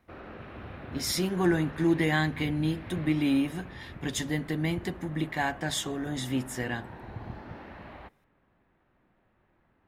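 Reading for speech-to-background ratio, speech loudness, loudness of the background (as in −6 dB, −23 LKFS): 15.0 dB, −29.5 LKFS, −44.5 LKFS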